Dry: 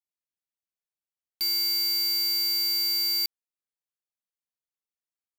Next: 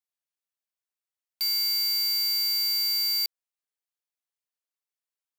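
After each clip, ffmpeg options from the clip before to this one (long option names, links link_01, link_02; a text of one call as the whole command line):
ffmpeg -i in.wav -af "highpass=500" out.wav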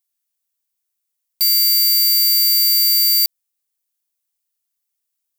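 ffmpeg -i in.wav -af "crystalizer=i=3.5:c=0" out.wav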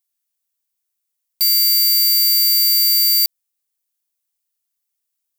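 ffmpeg -i in.wav -af anull out.wav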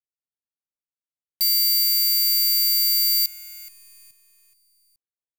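ffmpeg -i in.wav -filter_complex "[0:a]aecho=1:1:425|850|1275|1700:0.0794|0.0429|0.0232|0.0125,acrossover=split=590[link_01][link_02];[link_02]acrusher=bits=6:dc=4:mix=0:aa=0.000001[link_03];[link_01][link_03]amix=inputs=2:normalize=0,volume=-5dB" out.wav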